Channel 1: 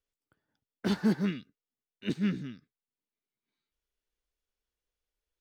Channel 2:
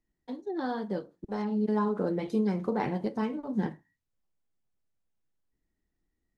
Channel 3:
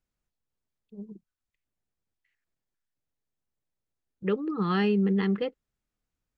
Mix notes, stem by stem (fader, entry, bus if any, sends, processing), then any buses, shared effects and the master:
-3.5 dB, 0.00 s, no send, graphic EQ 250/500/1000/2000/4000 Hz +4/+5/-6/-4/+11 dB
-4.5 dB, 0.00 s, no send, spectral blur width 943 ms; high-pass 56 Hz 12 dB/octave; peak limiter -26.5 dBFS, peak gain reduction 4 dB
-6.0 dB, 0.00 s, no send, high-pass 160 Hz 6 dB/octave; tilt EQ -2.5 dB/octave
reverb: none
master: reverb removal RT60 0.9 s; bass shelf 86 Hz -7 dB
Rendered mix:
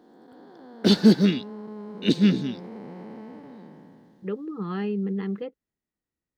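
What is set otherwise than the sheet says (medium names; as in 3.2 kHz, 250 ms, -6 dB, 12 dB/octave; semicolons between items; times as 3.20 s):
stem 1 -3.5 dB -> +8.0 dB; master: missing reverb removal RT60 0.9 s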